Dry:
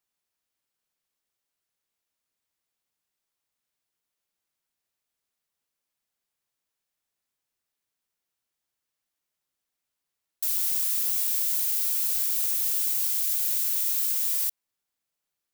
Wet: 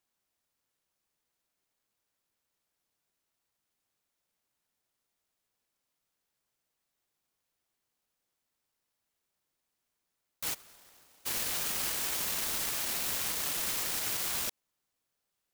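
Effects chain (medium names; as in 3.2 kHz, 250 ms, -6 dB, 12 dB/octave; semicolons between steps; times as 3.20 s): peak limiter -23 dBFS, peak gain reduction 11 dB; 10.53–11.25 s: band-pass filter 950 Hz -> 290 Hz, Q 0.83; delay time shaken by noise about 5.2 kHz, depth 0.12 ms; trim +2.5 dB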